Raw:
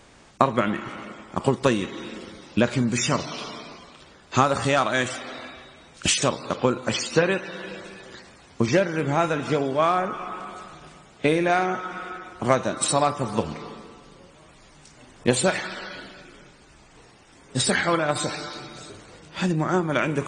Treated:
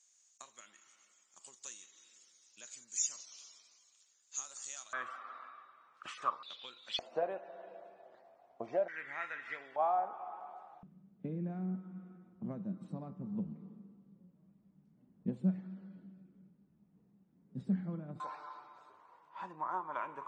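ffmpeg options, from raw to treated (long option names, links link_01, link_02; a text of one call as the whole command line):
ffmpeg -i in.wav -af "asetnsamples=nb_out_samples=441:pad=0,asendcmd='4.93 bandpass f 1200;6.43 bandpass f 3600;6.99 bandpass f 680;8.88 bandpass f 1900;9.76 bandpass f 790;10.83 bandpass f 190;18.2 bandpass f 990',bandpass=frequency=6700:width_type=q:width=9.5:csg=0" out.wav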